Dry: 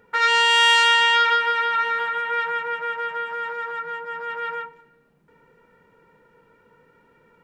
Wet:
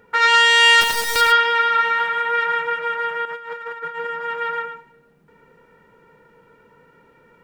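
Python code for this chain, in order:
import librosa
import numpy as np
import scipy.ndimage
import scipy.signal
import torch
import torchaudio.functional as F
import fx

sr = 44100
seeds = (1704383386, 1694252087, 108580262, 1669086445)

y = fx.dead_time(x, sr, dead_ms=0.21, at=(0.8, 1.2), fade=0.02)
y = y + 10.0 ** (-7.0 / 20.0) * np.pad(y, (int(109 * sr / 1000.0), 0))[:len(y)]
y = fx.over_compress(y, sr, threshold_db=-33.0, ratio=-0.5, at=(3.25, 4.07))
y = y * 10.0 ** (3.5 / 20.0)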